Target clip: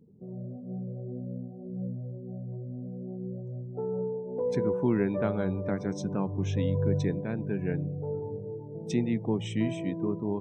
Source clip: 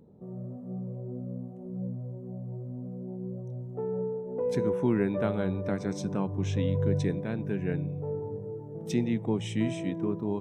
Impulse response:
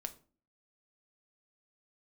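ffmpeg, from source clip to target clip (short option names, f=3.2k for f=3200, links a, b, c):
-af "afftdn=nr=17:nf=-49"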